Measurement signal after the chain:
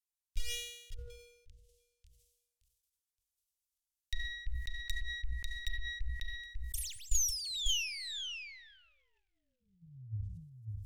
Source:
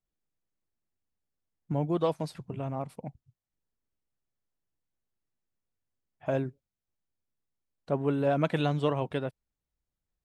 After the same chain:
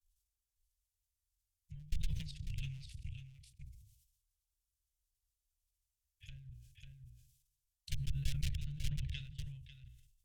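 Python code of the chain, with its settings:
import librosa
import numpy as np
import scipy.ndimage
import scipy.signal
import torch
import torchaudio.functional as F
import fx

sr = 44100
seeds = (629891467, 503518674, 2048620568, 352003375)

y = fx.tracing_dist(x, sr, depth_ms=0.076)
y = fx.env_lowpass_down(y, sr, base_hz=960.0, full_db=-24.5)
y = fx.rev_double_slope(y, sr, seeds[0], early_s=0.62, late_s=1.7, knee_db=-18, drr_db=16.5)
y = fx.level_steps(y, sr, step_db=13)
y = fx.hum_notches(y, sr, base_hz=60, count=4)
y = fx.transient(y, sr, attack_db=8, sustain_db=0)
y = fx.low_shelf(y, sr, hz=68.0, db=5.0)
y = y + 10.0 ** (-3.5 / 20.0) * np.pad(y, (int(546 * sr / 1000.0), 0))[:len(y)]
y = fx.clip_asym(y, sr, top_db=-23.5, bottom_db=-13.5)
y = scipy.signal.sosfilt(scipy.signal.cheby2(4, 60, [220.0, 1200.0], 'bandstop', fs=sr, output='sos'), y)
y = fx.peak_eq(y, sr, hz=4100.0, db=-6.0, octaves=0.78)
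y = fx.sustainer(y, sr, db_per_s=64.0)
y = F.gain(torch.from_numpy(y), 10.5).numpy()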